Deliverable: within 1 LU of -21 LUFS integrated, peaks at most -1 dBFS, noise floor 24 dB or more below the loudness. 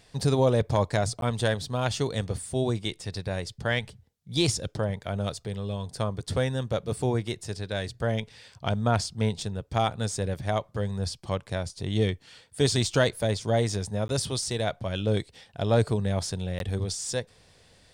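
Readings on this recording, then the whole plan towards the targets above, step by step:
dropouts 3; longest dropout 12 ms; loudness -28.5 LUFS; peak level -12.0 dBFS; loudness target -21.0 LUFS
-> interpolate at 1.21/14.08/16.59 s, 12 ms; trim +7.5 dB

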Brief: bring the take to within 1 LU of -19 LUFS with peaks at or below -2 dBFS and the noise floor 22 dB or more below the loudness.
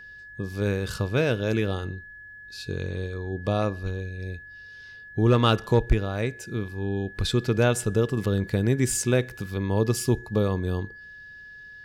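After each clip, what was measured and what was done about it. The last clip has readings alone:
steady tone 1.7 kHz; tone level -42 dBFS; loudness -26.0 LUFS; peak level -8.0 dBFS; loudness target -19.0 LUFS
-> band-stop 1.7 kHz, Q 30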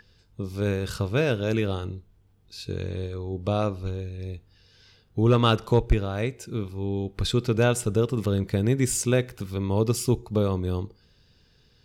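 steady tone not found; loudness -26.0 LUFS; peak level -8.0 dBFS; loudness target -19.0 LUFS
-> trim +7 dB; peak limiter -2 dBFS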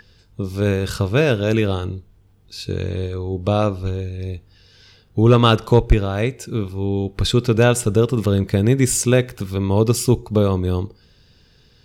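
loudness -19.0 LUFS; peak level -2.0 dBFS; noise floor -54 dBFS

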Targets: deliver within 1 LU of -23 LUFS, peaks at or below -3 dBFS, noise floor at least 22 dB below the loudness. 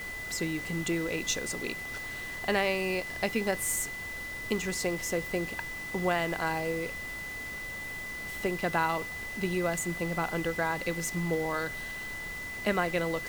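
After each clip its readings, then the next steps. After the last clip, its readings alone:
steady tone 2 kHz; tone level -37 dBFS; noise floor -39 dBFS; noise floor target -54 dBFS; loudness -31.5 LUFS; peak level -13.5 dBFS; loudness target -23.0 LUFS
-> band-stop 2 kHz, Q 30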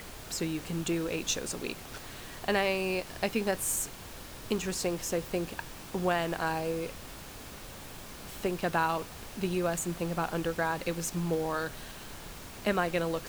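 steady tone not found; noise floor -46 dBFS; noise floor target -54 dBFS
-> noise print and reduce 8 dB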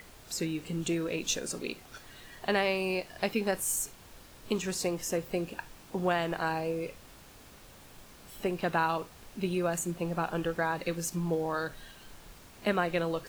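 noise floor -54 dBFS; loudness -32.0 LUFS; peak level -14.5 dBFS; loudness target -23.0 LUFS
-> trim +9 dB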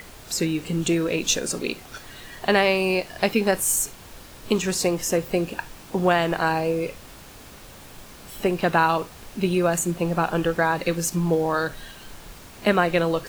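loudness -23.0 LUFS; peak level -5.5 dBFS; noise floor -45 dBFS

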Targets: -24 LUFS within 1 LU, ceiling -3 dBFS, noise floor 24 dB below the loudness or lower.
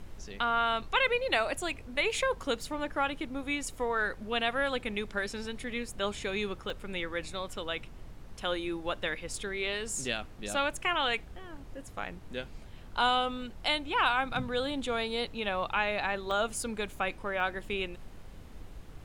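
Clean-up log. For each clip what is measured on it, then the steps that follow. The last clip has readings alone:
dropouts 3; longest dropout 2.2 ms; noise floor -48 dBFS; noise floor target -56 dBFS; loudness -32.0 LUFS; peak level -14.5 dBFS; loudness target -24.0 LUFS
-> interpolate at 6.70/16.31/17.40 s, 2.2 ms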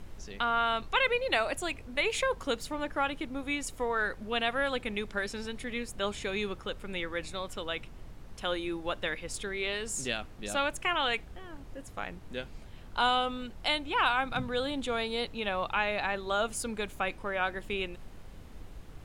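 dropouts 0; noise floor -48 dBFS; noise floor target -56 dBFS
-> noise print and reduce 8 dB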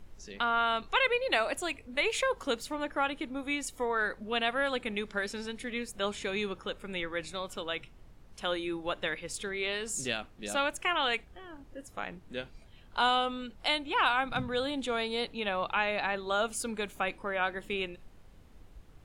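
noise floor -55 dBFS; noise floor target -56 dBFS
-> noise print and reduce 6 dB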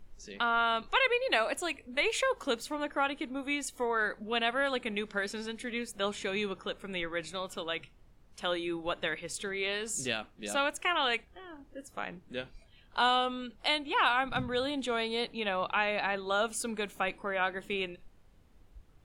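noise floor -60 dBFS; loudness -32.0 LUFS; peak level -14.5 dBFS; loudness target -24.0 LUFS
-> trim +8 dB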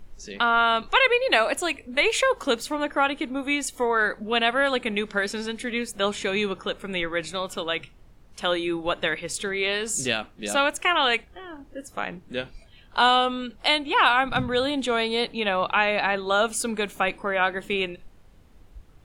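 loudness -24.0 LUFS; peak level -6.5 dBFS; noise floor -52 dBFS

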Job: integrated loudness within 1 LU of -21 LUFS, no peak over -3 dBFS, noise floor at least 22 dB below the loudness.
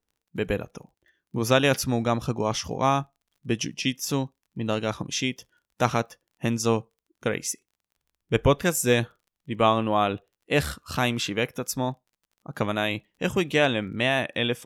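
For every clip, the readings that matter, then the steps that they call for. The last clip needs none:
tick rate 30 per s; loudness -26.0 LUFS; peak level -6.0 dBFS; loudness target -21.0 LUFS
-> de-click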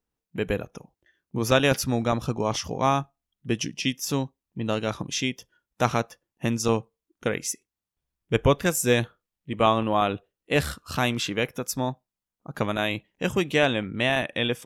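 tick rate 0.068 per s; loudness -26.0 LUFS; peak level -6.0 dBFS; loudness target -21.0 LUFS
-> trim +5 dB; peak limiter -3 dBFS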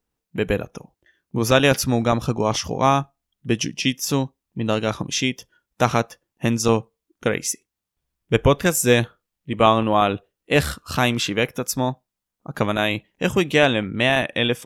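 loudness -21.0 LUFS; peak level -3.0 dBFS; noise floor -85 dBFS

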